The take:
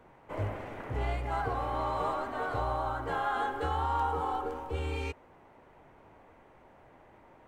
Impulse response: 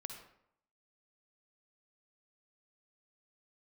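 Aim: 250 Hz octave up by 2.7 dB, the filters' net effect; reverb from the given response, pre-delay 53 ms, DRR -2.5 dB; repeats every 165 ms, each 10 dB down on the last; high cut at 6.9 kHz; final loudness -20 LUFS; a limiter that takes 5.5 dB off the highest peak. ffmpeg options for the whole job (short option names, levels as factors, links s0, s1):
-filter_complex "[0:a]lowpass=6900,equalizer=f=250:t=o:g=3.5,alimiter=level_in=1.06:limit=0.0631:level=0:latency=1,volume=0.944,aecho=1:1:165|330|495|660:0.316|0.101|0.0324|0.0104,asplit=2[s0][s1];[1:a]atrim=start_sample=2205,adelay=53[s2];[s1][s2]afir=irnorm=-1:irlink=0,volume=1.88[s3];[s0][s3]amix=inputs=2:normalize=0,volume=3.16"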